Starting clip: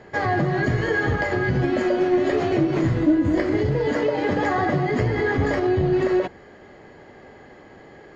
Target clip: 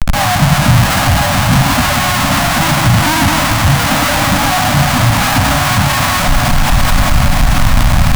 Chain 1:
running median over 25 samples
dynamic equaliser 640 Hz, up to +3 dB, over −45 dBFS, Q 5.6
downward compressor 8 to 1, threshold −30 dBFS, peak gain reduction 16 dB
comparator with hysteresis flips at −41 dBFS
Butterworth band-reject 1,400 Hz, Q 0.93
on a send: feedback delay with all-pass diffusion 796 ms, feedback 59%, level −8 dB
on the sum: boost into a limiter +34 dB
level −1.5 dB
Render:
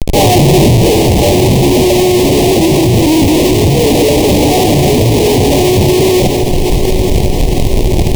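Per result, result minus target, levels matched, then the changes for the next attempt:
500 Hz band +10.0 dB; downward compressor: peak gain reduction +8.5 dB
change: Butterworth band-reject 400 Hz, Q 0.93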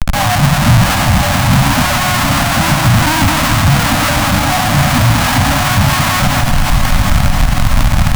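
downward compressor: peak gain reduction +8.5 dB
change: downward compressor 8 to 1, threshold −20.5 dBFS, peak gain reduction 8 dB

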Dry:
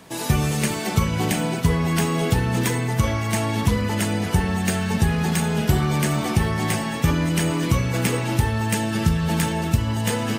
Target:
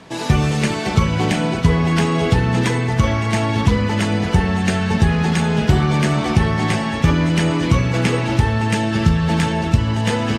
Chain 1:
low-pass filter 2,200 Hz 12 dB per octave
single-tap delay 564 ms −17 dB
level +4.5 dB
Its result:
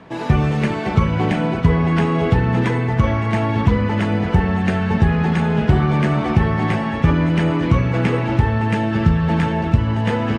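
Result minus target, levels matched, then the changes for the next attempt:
4,000 Hz band −7.0 dB
change: low-pass filter 5,300 Hz 12 dB per octave

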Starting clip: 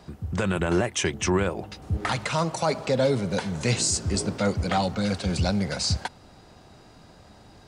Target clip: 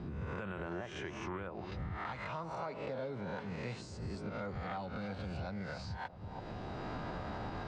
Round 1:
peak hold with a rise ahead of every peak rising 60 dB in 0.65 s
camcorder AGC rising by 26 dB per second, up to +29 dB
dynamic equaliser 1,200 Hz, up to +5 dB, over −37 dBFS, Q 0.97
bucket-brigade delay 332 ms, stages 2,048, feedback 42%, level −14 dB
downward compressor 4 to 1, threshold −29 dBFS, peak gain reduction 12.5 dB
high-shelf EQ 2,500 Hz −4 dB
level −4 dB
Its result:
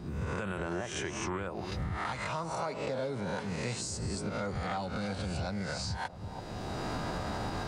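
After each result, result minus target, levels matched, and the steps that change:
downward compressor: peak gain reduction −5.5 dB; 4,000 Hz band +4.5 dB
change: downward compressor 4 to 1, threshold −36.5 dBFS, peak gain reduction 18 dB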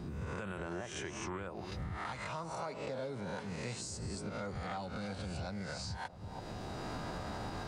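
4,000 Hz band +4.5 dB
add after downward compressor: low-pass filter 3,300 Hz 12 dB per octave

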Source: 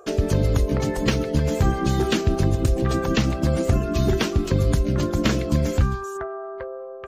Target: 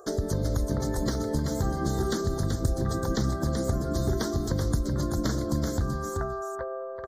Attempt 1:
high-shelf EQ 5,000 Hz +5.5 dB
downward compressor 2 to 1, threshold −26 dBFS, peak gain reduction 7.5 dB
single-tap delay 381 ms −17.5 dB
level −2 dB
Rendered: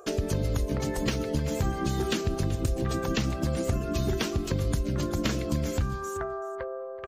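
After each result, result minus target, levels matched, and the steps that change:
echo-to-direct −11.5 dB; 2,000 Hz band +4.0 dB
change: single-tap delay 381 ms −6 dB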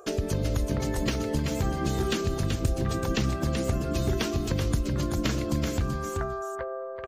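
2,000 Hz band +4.0 dB
add after downward compressor: Butterworth band-reject 2,600 Hz, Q 1.2

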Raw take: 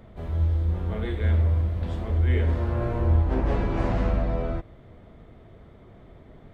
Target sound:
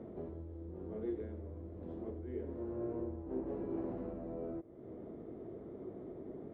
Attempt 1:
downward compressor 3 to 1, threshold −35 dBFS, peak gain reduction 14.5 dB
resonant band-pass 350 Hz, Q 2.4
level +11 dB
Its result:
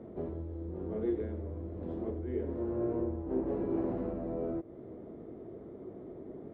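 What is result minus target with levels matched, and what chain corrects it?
downward compressor: peak gain reduction −6.5 dB
downward compressor 3 to 1, threshold −45 dBFS, peak gain reduction 21 dB
resonant band-pass 350 Hz, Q 2.4
level +11 dB

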